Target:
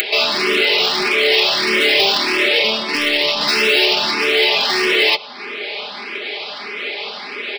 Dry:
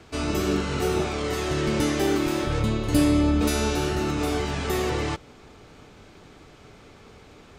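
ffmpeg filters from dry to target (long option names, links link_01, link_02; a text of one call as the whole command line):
ffmpeg -i in.wav -filter_complex "[0:a]highpass=170,acrossover=split=260 2300:gain=0.0794 1 0.126[link_01][link_02][link_03];[link_01][link_02][link_03]amix=inputs=3:normalize=0,aecho=1:1:116:0.0708,aresample=11025,asoftclip=type=hard:threshold=-28.5dB,aresample=44100,acompressor=mode=upward:threshold=-34dB:ratio=2.5,aexciter=amount=2.8:drive=9.8:freq=2100,aecho=1:1:4.9:0.71,apsyclip=20.5dB,aemphasis=mode=production:type=bsi,asplit=2[link_04][link_05];[link_05]afreqshift=1.6[link_06];[link_04][link_06]amix=inputs=2:normalize=1,volume=-6.5dB" out.wav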